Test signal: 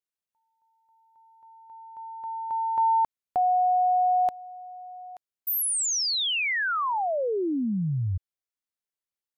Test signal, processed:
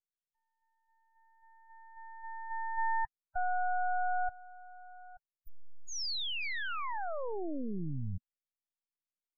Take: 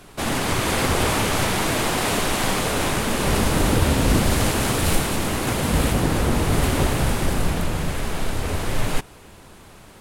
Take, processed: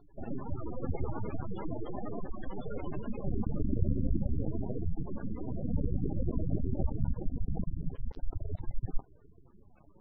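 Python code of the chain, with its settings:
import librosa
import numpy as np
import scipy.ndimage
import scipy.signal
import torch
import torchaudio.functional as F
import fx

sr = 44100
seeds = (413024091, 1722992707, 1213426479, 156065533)

y = np.maximum(x, 0.0)
y = fx.high_shelf_res(y, sr, hz=6700.0, db=-7.0, q=1.5)
y = fx.spec_gate(y, sr, threshold_db=-15, keep='strong')
y = y * librosa.db_to_amplitude(-5.5)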